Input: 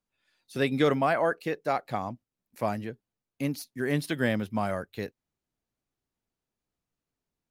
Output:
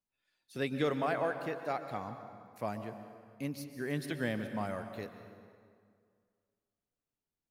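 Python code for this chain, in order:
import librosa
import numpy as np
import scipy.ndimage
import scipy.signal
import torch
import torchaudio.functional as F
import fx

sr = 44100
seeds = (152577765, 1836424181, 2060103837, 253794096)

y = fx.rev_plate(x, sr, seeds[0], rt60_s=2.1, hf_ratio=0.7, predelay_ms=110, drr_db=8.5)
y = F.gain(torch.from_numpy(y), -8.0).numpy()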